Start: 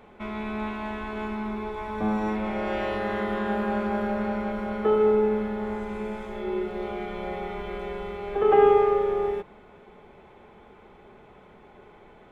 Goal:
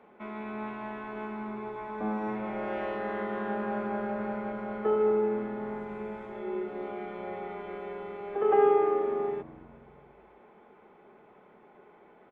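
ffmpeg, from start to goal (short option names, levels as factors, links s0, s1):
-filter_complex "[0:a]acrossover=split=160 2600:gain=0.1 1 0.2[s0][s1][s2];[s0][s1][s2]amix=inputs=3:normalize=0,asplit=5[s3][s4][s5][s6][s7];[s4]adelay=245,afreqshift=-88,volume=0.0891[s8];[s5]adelay=490,afreqshift=-176,volume=0.0462[s9];[s6]adelay=735,afreqshift=-264,volume=0.024[s10];[s7]adelay=980,afreqshift=-352,volume=0.0126[s11];[s3][s8][s9][s10][s11]amix=inputs=5:normalize=0,volume=0.596"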